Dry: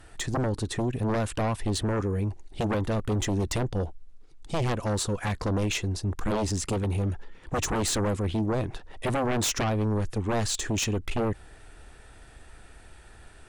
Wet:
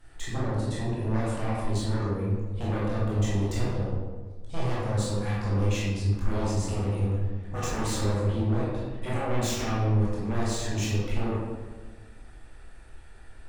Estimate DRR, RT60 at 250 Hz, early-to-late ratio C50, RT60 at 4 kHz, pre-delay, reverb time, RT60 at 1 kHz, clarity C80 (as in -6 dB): -8.5 dB, 1.6 s, -2.0 dB, 0.80 s, 17 ms, 1.4 s, 1.3 s, 1.0 dB